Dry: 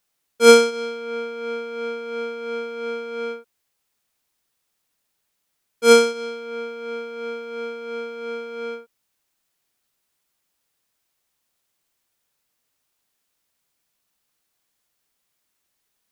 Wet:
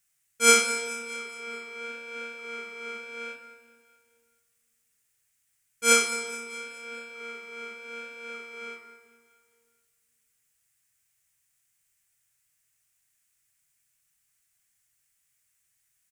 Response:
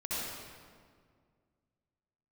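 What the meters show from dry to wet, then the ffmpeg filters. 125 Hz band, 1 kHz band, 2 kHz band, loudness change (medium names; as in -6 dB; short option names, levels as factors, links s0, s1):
no reading, -5.5 dB, 0.0 dB, -5.5 dB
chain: -filter_complex "[0:a]equalizer=f=125:t=o:w=1:g=6,equalizer=f=250:t=o:w=1:g=-12,equalizer=f=500:t=o:w=1:g=-11,equalizer=f=1000:t=o:w=1:g=-8,equalizer=f=2000:t=o:w=1:g=5,equalizer=f=4000:t=o:w=1:g=-8,equalizer=f=8000:t=o:w=1:g=8,flanger=delay=2.4:depth=9.4:regen=-86:speed=0.84:shape=triangular,aecho=1:1:212|424|636|848|1060:0.178|0.0925|0.0481|0.025|0.013,asplit=2[s0][s1];[1:a]atrim=start_sample=2205,adelay=9[s2];[s1][s2]afir=irnorm=-1:irlink=0,volume=0.126[s3];[s0][s3]amix=inputs=2:normalize=0,volume=1.58"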